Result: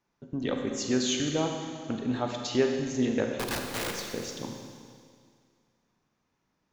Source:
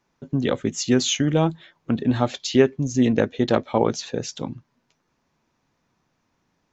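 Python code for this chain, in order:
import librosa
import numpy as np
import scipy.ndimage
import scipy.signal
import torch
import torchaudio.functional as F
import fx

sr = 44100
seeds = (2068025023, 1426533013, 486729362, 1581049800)

y = fx.dynamic_eq(x, sr, hz=140.0, q=1.1, threshold_db=-33.0, ratio=4.0, max_db=-6)
y = fx.overflow_wrap(y, sr, gain_db=19.5, at=(3.37, 4.06))
y = fx.rev_schroeder(y, sr, rt60_s=2.1, comb_ms=32, drr_db=2.5)
y = y * librosa.db_to_amplitude(-8.0)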